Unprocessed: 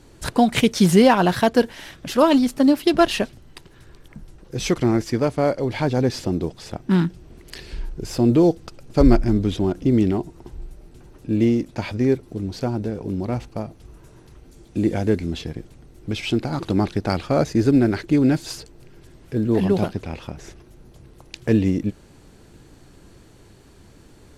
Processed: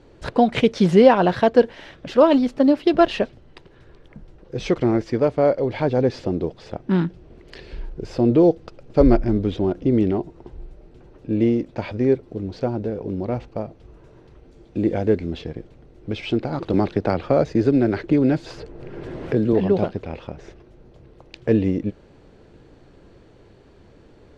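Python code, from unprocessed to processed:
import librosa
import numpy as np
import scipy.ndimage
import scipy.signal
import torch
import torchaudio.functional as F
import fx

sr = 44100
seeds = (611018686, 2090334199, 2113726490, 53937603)

y = scipy.signal.sosfilt(scipy.signal.butter(2, 3800.0, 'lowpass', fs=sr, output='sos'), x)
y = fx.peak_eq(y, sr, hz=510.0, db=7.0, octaves=0.95)
y = fx.band_squash(y, sr, depth_pct=70, at=(16.73, 19.53))
y = y * 10.0 ** (-2.5 / 20.0)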